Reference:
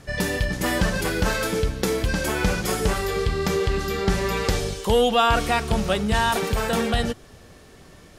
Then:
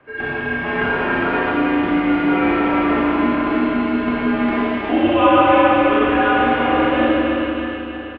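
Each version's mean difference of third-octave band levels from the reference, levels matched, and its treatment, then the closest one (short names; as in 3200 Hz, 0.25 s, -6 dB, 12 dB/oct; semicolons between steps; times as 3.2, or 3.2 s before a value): 14.0 dB: on a send: feedback echo 0.316 s, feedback 52%, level -6 dB; on the sum: Schroeder reverb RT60 3.1 s, combs from 28 ms, DRR -8.5 dB; mistuned SSB -150 Hz 300–2900 Hz; bell 820 Hz +4.5 dB 2.3 oct; gain -4.5 dB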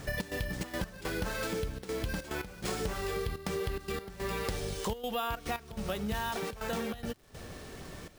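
6.0 dB: compressor 8:1, threshold -34 dBFS, peak gain reduction 18.5 dB; step gate "xx.xxx.x..xxxxx" 143 bpm -12 dB; careless resampling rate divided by 3×, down none, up hold; crackle 440/s -56 dBFS; gain +2.5 dB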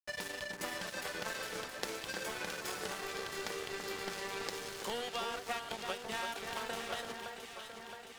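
7.5 dB: weighting filter A; compressor 5:1, threshold -34 dBFS, peak gain reduction 17 dB; crossover distortion -38.5 dBFS; on a send: echo with dull and thin repeats by turns 0.334 s, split 2000 Hz, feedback 80%, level -5 dB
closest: second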